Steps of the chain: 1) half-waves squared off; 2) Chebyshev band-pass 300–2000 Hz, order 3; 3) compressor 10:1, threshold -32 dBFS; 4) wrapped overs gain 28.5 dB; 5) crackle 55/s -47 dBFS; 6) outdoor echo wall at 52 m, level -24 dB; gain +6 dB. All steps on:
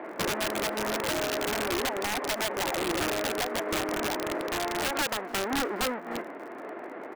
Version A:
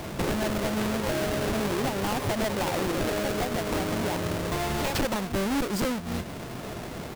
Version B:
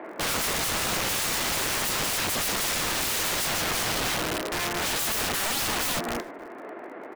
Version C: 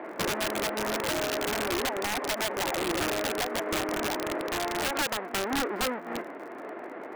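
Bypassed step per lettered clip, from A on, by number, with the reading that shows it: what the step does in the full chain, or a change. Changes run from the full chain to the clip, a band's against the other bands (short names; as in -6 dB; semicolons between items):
2, 125 Hz band +13.0 dB; 3, mean gain reduction 11.5 dB; 6, echo-to-direct -25.0 dB to none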